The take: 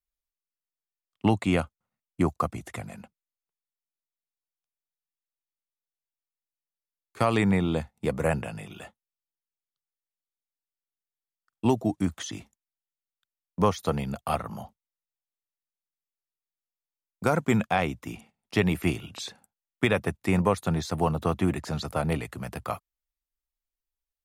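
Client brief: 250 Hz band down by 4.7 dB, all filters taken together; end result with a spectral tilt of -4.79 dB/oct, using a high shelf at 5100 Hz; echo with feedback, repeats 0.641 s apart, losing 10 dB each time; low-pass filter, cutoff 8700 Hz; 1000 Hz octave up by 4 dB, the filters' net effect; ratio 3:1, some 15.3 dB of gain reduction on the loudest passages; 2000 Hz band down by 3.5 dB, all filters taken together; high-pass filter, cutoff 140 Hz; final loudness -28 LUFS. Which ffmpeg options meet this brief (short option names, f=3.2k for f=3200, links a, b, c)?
-af "highpass=140,lowpass=8.7k,equalizer=f=250:t=o:g=-6,equalizer=f=1k:t=o:g=7,equalizer=f=2k:t=o:g=-5.5,highshelf=f=5.1k:g=-6,acompressor=threshold=-38dB:ratio=3,aecho=1:1:641|1282|1923|2564:0.316|0.101|0.0324|0.0104,volume=13.5dB"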